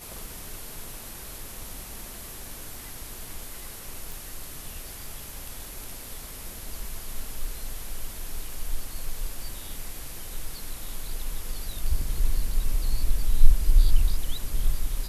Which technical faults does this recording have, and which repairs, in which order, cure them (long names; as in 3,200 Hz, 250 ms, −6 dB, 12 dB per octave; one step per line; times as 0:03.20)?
0:04.12: click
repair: click removal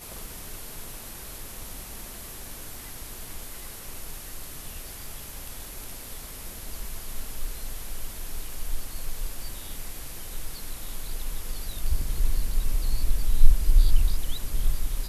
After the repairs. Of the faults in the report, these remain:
none of them is left